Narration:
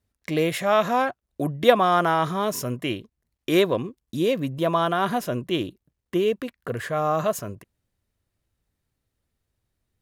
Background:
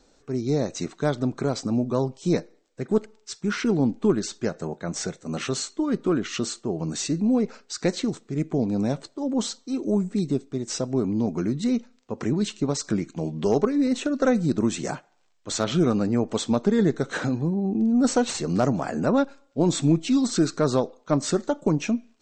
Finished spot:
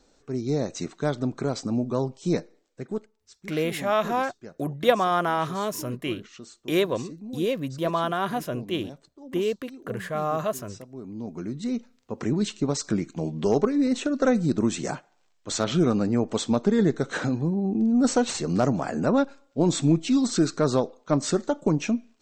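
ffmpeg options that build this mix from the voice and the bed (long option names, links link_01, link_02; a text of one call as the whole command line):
ffmpeg -i stem1.wav -i stem2.wav -filter_complex "[0:a]adelay=3200,volume=-3.5dB[link_01];[1:a]volume=14dB,afade=type=out:start_time=2.64:duration=0.47:silence=0.188365,afade=type=in:start_time=10.96:duration=1.41:silence=0.158489[link_02];[link_01][link_02]amix=inputs=2:normalize=0" out.wav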